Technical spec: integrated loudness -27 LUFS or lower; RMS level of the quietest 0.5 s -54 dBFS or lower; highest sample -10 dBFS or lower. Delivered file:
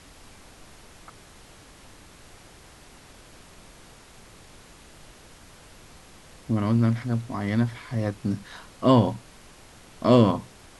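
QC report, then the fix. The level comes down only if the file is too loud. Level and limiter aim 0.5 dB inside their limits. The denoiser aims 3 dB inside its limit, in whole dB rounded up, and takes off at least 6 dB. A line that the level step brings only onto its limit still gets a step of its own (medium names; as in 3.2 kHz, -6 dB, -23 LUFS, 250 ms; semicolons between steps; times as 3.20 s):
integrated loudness -24.0 LUFS: fail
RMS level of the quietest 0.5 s -50 dBFS: fail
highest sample -5.0 dBFS: fail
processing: noise reduction 6 dB, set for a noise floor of -50 dBFS; trim -3.5 dB; peak limiter -10.5 dBFS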